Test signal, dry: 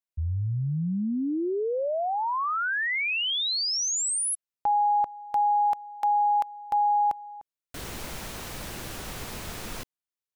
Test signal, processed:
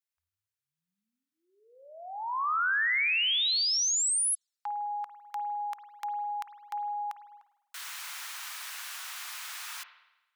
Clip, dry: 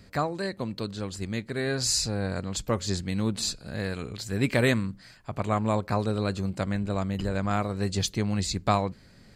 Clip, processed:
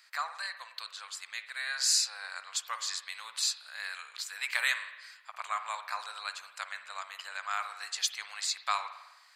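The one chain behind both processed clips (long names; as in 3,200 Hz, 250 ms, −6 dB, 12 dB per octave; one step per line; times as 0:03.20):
inverse Chebyshev high-pass filter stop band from 320 Hz, stop band 60 dB
spring reverb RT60 1 s, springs 50 ms, chirp 45 ms, DRR 9.5 dB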